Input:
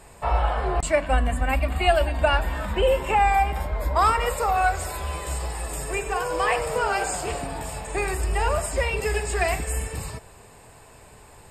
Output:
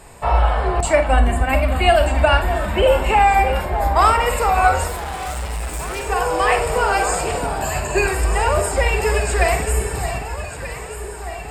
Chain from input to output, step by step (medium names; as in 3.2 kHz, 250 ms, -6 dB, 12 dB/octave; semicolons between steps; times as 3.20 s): 7.62–8.08 s: rippled EQ curve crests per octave 1.4, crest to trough 17 dB; echo whose repeats swap between lows and highs 617 ms, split 1.4 kHz, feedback 77%, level -9 dB; 4.88–6.08 s: hard clipper -29.5 dBFS, distortion -18 dB; reverberation RT60 0.15 s, pre-delay 42 ms, DRR 9 dB; trim +5 dB